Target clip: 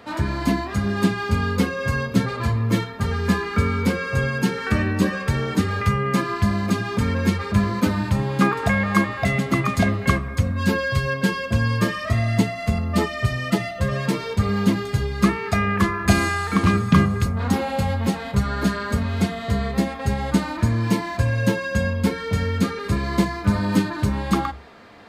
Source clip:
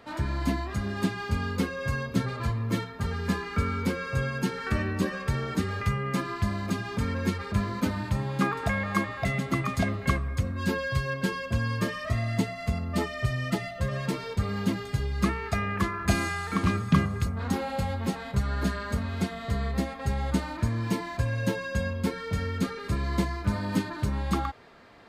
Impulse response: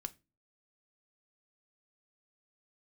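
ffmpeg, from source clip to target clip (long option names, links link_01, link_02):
-filter_complex "[0:a]asplit=2[link_01][link_02];[link_02]highpass=44[link_03];[1:a]atrim=start_sample=2205[link_04];[link_03][link_04]afir=irnorm=-1:irlink=0,volume=11dB[link_05];[link_01][link_05]amix=inputs=2:normalize=0,volume=-4dB"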